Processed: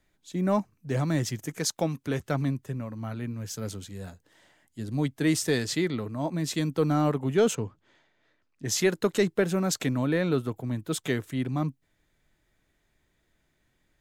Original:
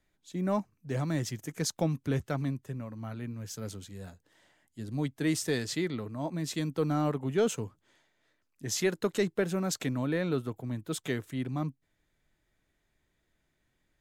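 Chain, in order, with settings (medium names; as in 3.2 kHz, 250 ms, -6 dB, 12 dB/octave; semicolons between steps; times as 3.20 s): 1.59–2.26 s: bass shelf 220 Hz -9 dB; 7.55–8.65 s: Bessel low-pass 4 kHz, order 2; trim +4.5 dB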